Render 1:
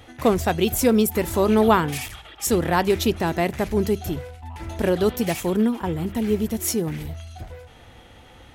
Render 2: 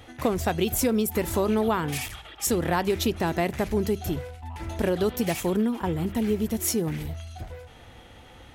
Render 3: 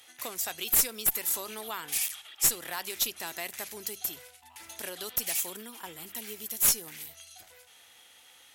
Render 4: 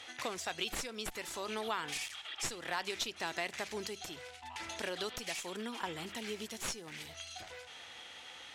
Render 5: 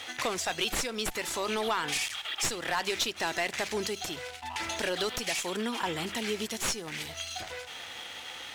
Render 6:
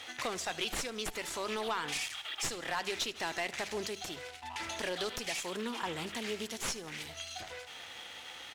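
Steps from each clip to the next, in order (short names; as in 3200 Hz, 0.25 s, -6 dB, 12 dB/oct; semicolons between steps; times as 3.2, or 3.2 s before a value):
compressor 6:1, threshold -19 dBFS, peak gain reduction 8 dB; gain -1 dB
differentiator; one-sided clip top -28 dBFS; gain +5.5 dB
compressor 2:1, threshold -45 dBFS, peak gain reduction 14.5 dB; air absorption 110 m; gain +9 dB
sample leveller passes 2; gain +1.5 dB
feedback echo 77 ms, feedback 53%, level -19 dB; Doppler distortion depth 0.17 ms; gain -5 dB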